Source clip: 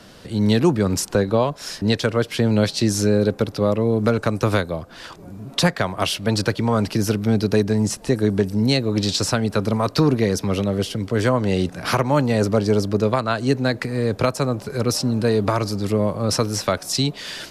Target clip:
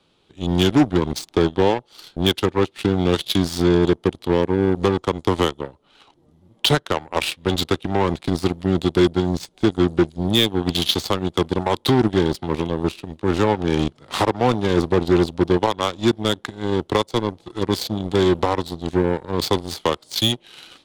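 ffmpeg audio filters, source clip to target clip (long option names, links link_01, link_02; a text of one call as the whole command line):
ffmpeg -i in.wav -filter_complex "[0:a]equalizer=frequency=400:width_type=o:width=0.67:gain=7,equalizer=frequency=1000:width_type=o:width=0.67:gain=6,equalizer=frequency=4000:width_type=o:width=0.67:gain=9,asplit=2[link_01][link_02];[link_02]asoftclip=type=hard:threshold=-11dB,volume=-6dB[link_03];[link_01][link_03]amix=inputs=2:normalize=0,asetrate=37044,aresample=44100,aeval=exprs='1*(cos(1*acos(clip(val(0)/1,-1,1)))-cos(1*PI/2))+0.126*(cos(7*acos(clip(val(0)/1,-1,1)))-cos(7*PI/2))':channel_layout=same,volume=-6dB" out.wav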